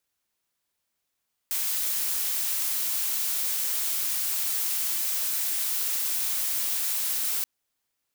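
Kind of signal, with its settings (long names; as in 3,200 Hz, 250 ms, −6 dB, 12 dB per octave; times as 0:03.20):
noise blue, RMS −27.5 dBFS 5.93 s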